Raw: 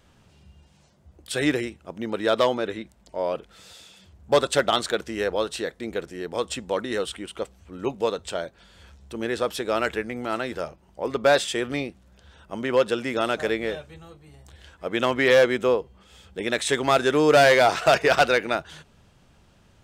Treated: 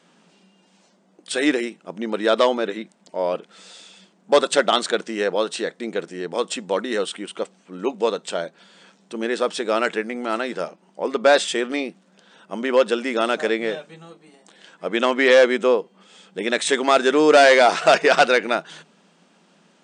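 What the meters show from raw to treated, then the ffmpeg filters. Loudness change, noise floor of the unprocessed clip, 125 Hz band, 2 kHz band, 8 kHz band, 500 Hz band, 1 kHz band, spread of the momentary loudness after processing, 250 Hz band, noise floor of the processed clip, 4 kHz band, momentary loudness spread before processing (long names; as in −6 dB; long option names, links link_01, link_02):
+3.5 dB, −58 dBFS, −7.0 dB, +3.5 dB, +3.5 dB, +3.5 dB, +3.5 dB, 16 LU, +3.5 dB, −59 dBFS, +3.5 dB, 16 LU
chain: -af "afftfilt=real='re*between(b*sr/4096,160,9500)':imag='im*between(b*sr/4096,160,9500)':win_size=4096:overlap=0.75,volume=3.5dB"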